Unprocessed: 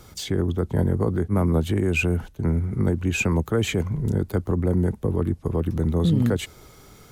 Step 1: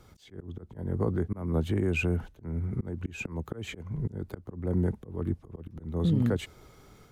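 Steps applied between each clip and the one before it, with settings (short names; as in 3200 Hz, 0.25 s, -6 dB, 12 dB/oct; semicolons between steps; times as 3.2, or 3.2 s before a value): high shelf 4400 Hz -8 dB; AGC gain up to 3 dB; auto swell 0.269 s; gain -8 dB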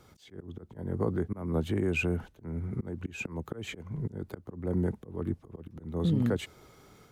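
low shelf 64 Hz -12 dB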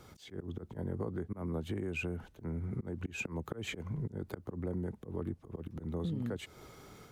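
compressor 5:1, threshold -37 dBFS, peak gain reduction 13 dB; gain +2.5 dB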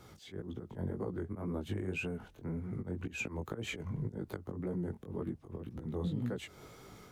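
chorus 1.9 Hz, delay 15.5 ms, depth 6.9 ms; gain +3 dB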